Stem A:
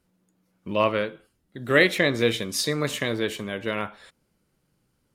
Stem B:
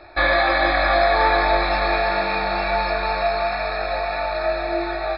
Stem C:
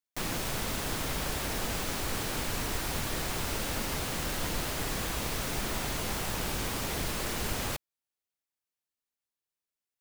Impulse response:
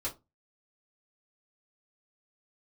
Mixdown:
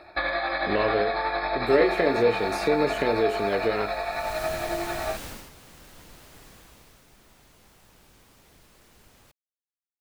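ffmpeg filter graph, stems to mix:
-filter_complex "[0:a]acrossover=split=2500[link_01][link_02];[link_02]acompressor=threshold=-38dB:ratio=4:attack=1:release=60[link_03];[link_01][link_03]amix=inputs=2:normalize=0,equalizer=frequency=420:width=1.5:gain=11.5,volume=-2.5dB,asplit=2[link_04][link_05];[link_05]volume=-13dB[link_06];[1:a]highpass=frequency=92:poles=1,acompressor=threshold=-23dB:ratio=2.5,tremolo=f=11:d=0.41,volume=-2dB[link_07];[2:a]adelay=1550,volume=-4.5dB,afade=type=in:start_time=4.09:duration=0.33:silence=0.223872,afade=type=out:start_time=5.25:duration=0.25:silence=0.251189,afade=type=out:start_time=6.43:duration=0.62:silence=0.446684[link_08];[link_04][link_08]amix=inputs=2:normalize=0,acompressor=threshold=-23dB:ratio=6,volume=0dB[link_09];[3:a]atrim=start_sample=2205[link_10];[link_06][link_10]afir=irnorm=-1:irlink=0[link_11];[link_07][link_09][link_11]amix=inputs=3:normalize=0"

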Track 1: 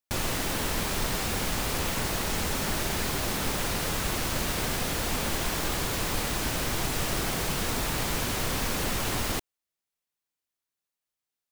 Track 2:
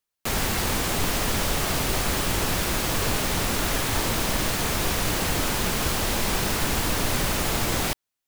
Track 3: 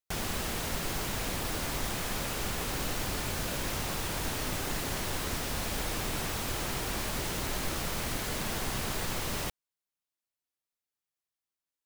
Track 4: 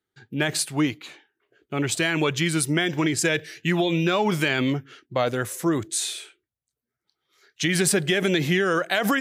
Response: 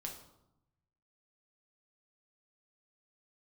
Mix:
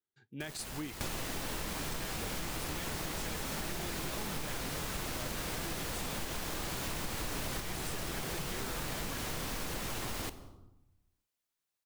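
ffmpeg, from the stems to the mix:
-filter_complex "[0:a]adelay=900,volume=-2dB,asplit=2[link_01][link_02];[link_02]volume=-5dB[link_03];[1:a]adelay=350,volume=1dB[link_04];[2:a]acrusher=bits=4:mix=0:aa=0.000001,adelay=300,volume=-16.5dB[link_05];[3:a]volume=-16dB,asplit=2[link_06][link_07];[link_07]apad=whole_len=380520[link_08];[link_04][link_08]sidechaincompress=threshold=-57dB:ratio=12:attack=24:release=1160[link_09];[4:a]atrim=start_sample=2205[link_10];[link_03][link_10]afir=irnorm=-1:irlink=0[link_11];[link_01][link_09][link_05][link_06][link_11]amix=inputs=5:normalize=0,acompressor=threshold=-35dB:ratio=6"

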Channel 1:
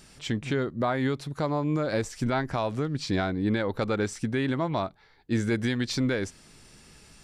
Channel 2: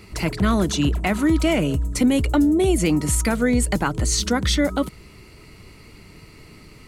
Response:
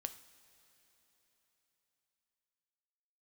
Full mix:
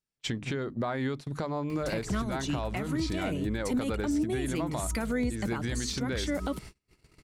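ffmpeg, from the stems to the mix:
-filter_complex "[0:a]bandreject=frequency=50:width_type=h:width=6,bandreject=frequency=100:width_type=h:width=6,bandreject=frequency=150:width_type=h:width=6,bandreject=frequency=200:width_type=h:width=6,bandreject=frequency=250:width_type=h:width=6,bandreject=frequency=300:width_type=h:width=6,acompressor=threshold=-31dB:ratio=4,volume=2.5dB,asplit=2[link_01][link_02];[1:a]acompressor=mode=upward:threshold=-34dB:ratio=2.5,adelay=1700,volume=-0.5dB[link_03];[link_02]apad=whole_len=378083[link_04];[link_03][link_04]sidechaincompress=threshold=-41dB:ratio=8:attack=45:release=202[link_05];[link_01][link_05]amix=inputs=2:normalize=0,agate=range=-42dB:threshold=-37dB:ratio=16:detection=peak,alimiter=limit=-21.5dB:level=0:latency=1:release=198"

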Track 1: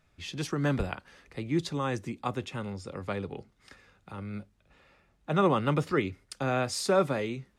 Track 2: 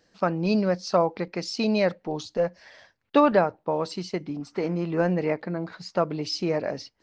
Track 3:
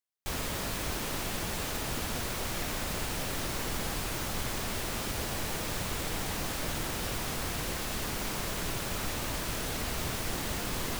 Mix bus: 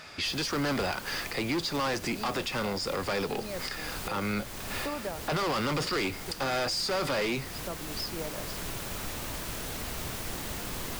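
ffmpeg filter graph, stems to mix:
ffmpeg -i stem1.wav -i stem2.wav -i stem3.wav -filter_complex "[0:a]asplit=2[link_01][link_02];[link_02]highpass=frequency=720:poles=1,volume=30dB,asoftclip=type=tanh:threshold=-12dB[link_03];[link_01][link_03]amix=inputs=2:normalize=0,lowpass=frequency=6900:poles=1,volume=-6dB,volume=2.5dB[link_04];[1:a]adelay=1700,volume=-11.5dB[link_05];[2:a]highshelf=frequency=12000:gain=4,volume=-3dB[link_06];[link_04][link_05]amix=inputs=2:normalize=0,equalizer=frequency=4800:width_type=o:width=0.26:gain=11,alimiter=limit=-14dB:level=0:latency=1:release=272,volume=0dB[link_07];[link_06][link_07]amix=inputs=2:normalize=0,alimiter=limit=-23.5dB:level=0:latency=1:release=361" out.wav

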